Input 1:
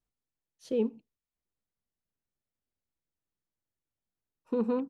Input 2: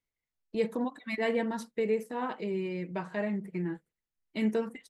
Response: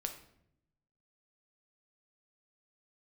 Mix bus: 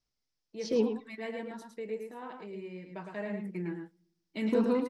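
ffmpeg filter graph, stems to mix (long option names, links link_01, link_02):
-filter_complex "[0:a]lowpass=frequency=5300:width_type=q:width=4.9,volume=-1.5dB,asplit=3[link_01][link_02][link_03];[link_02]volume=-9dB[link_04];[link_03]volume=-6.5dB[link_05];[1:a]highpass=140,volume=-4dB,afade=type=in:start_time=2.81:duration=0.71:silence=0.421697,asplit=3[link_06][link_07][link_08];[link_07]volume=-13.5dB[link_09];[link_08]volume=-3.5dB[link_10];[2:a]atrim=start_sample=2205[link_11];[link_04][link_09]amix=inputs=2:normalize=0[link_12];[link_12][link_11]afir=irnorm=-1:irlink=0[link_13];[link_05][link_10]amix=inputs=2:normalize=0,aecho=0:1:109:1[link_14];[link_01][link_06][link_13][link_14]amix=inputs=4:normalize=0"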